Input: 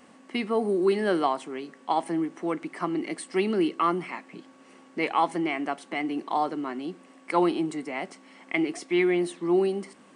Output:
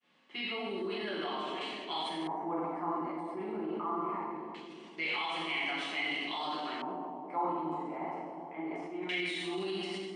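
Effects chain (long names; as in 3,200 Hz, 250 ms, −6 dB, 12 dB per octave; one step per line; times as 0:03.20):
downward expander −47 dBFS
first-order pre-emphasis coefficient 0.9
reverb whose tail is shaped and stops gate 430 ms falling, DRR −8 dB
brickwall limiter −29.5 dBFS, peak gain reduction 9 dB
high-shelf EQ 3,800 Hz −9.5 dB, from 0:01.61 +2.5 dB
bucket-brigade delay 356 ms, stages 2,048, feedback 59%, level −7 dB
auto-filter low-pass square 0.22 Hz 900–3,300 Hz
level that may fall only so fast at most 27 dB per second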